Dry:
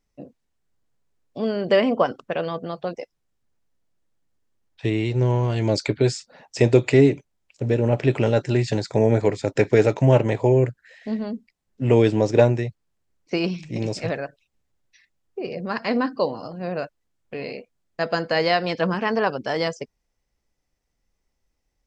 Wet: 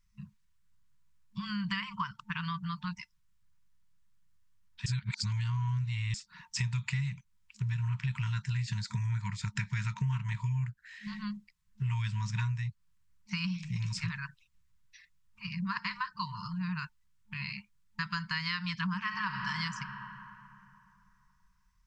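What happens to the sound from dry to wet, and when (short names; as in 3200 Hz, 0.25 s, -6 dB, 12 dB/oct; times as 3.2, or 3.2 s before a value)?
4.86–6.14 reverse
18.98–19.49 reverb throw, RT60 2.9 s, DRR 2.5 dB
whole clip: low shelf 91 Hz +5.5 dB; FFT band-reject 210–900 Hz; compressor 4:1, threshold -32 dBFS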